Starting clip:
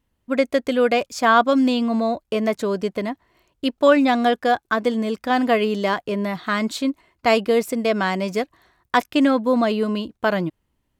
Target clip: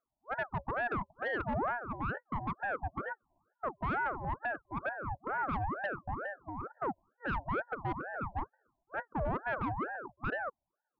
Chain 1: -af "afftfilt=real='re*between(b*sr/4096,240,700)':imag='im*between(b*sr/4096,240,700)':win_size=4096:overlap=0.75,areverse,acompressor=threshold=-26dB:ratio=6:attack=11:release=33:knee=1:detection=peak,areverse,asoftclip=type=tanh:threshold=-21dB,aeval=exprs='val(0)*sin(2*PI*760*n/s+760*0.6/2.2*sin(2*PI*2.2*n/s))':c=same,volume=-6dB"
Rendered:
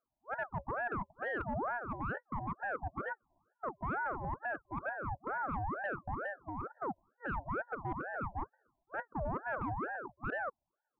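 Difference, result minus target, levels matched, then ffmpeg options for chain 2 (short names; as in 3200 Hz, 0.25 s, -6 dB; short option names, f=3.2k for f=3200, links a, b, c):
compressor: peak gain reduction +6 dB
-af "afftfilt=real='re*between(b*sr/4096,240,700)':imag='im*between(b*sr/4096,240,700)':win_size=4096:overlap=0.75,areverse,acompressor=threshold=-18.5dB:ratio=6:attack=11:release=33:knee=1:detection=peak,areverse,asoftclip=type=tanh:threshold=-21dB,aeval=exprs='val(0)*sin(2*PI*760*n/s+760*0.6/2.2*sin(2*PI*2.2*n/s))':c=same,volume=-6dB"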